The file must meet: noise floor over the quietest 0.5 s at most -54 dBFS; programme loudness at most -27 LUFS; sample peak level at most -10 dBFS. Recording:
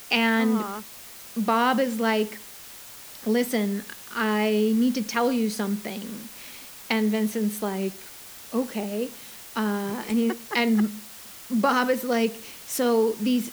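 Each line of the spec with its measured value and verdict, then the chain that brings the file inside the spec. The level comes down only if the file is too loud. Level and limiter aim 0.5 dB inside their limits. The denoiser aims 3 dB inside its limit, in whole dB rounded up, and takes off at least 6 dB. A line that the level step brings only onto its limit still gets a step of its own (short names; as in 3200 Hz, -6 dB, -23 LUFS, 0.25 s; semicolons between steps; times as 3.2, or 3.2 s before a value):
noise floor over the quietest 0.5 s -43 dBFS: fail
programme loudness -25.5 LUFS: fail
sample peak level -8.0 dBFS: fail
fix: denoiser 12 dB, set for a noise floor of -43 dBFS; gain -2 dB; limiter -10.5 dBFS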